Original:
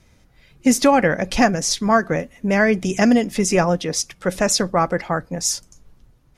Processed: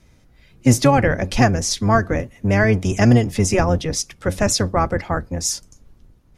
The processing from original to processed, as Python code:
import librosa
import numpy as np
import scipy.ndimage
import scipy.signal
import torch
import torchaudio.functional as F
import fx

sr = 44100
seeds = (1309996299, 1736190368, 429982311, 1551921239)

y = fx.octave_divider(x, sr, octaves=1, level_db=2.0)
y = y * 10.0 ** (-1.0 / 20.0)